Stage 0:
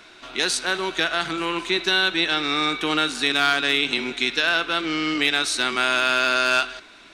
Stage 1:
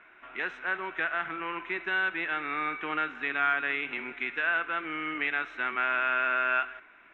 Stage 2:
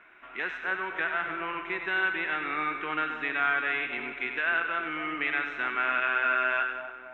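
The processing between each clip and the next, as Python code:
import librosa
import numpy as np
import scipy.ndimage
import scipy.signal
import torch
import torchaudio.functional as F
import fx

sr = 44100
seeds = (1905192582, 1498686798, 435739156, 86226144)

y1 = scipy.signal.sosfilt(scipy.signal.cheby2(4, 40, 4200.0, 'lowpass', fs=sr, output='sos'), x)
y1 = fx.tilt_shelf(y1, sr, db=-7.5, hz=940.0)
y1 = F.gain(torch.from_numpy(y1), -7.5).numpy()
y2 = fx.echo_split(y1, sr, split_hz=980.0, low_ms=269, high_ms=95, feedback_pct=52, wet_db=-7.0)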